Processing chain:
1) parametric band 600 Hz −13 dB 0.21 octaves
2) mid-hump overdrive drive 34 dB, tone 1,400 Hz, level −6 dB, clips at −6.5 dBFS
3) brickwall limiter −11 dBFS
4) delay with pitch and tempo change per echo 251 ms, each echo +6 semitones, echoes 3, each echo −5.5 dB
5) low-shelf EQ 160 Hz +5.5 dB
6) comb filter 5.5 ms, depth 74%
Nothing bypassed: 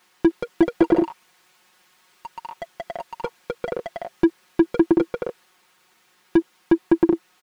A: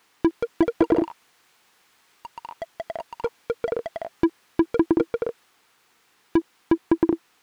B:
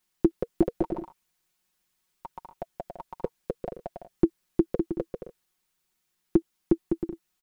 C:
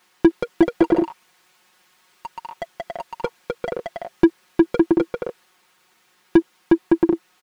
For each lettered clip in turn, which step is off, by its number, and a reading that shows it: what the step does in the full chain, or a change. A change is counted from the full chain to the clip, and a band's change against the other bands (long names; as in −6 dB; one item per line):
6, 2 kHz band −1.5 dB
2, change in crest factor +4.5 dB
3, change in momentary loudness spread −1 LU